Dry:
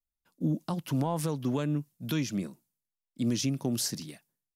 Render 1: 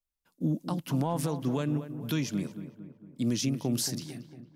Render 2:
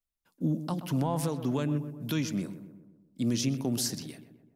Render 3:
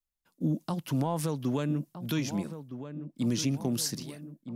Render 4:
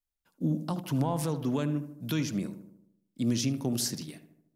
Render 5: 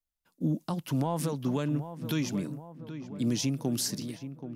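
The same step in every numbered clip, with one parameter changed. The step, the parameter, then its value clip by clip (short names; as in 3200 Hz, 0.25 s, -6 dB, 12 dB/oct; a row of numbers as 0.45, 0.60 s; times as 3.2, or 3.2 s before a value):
darkening echo, time: 227, 126, 1264, 76, 778 ms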